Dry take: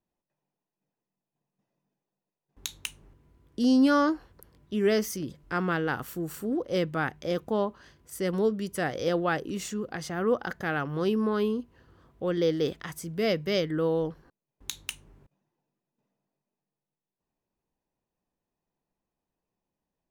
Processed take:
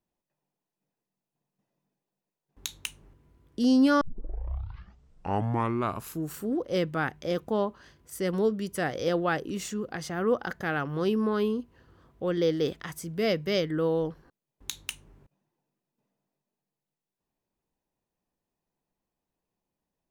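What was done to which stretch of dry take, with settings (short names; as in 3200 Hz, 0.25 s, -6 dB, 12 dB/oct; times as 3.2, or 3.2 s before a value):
4.01 tape start 2.34 s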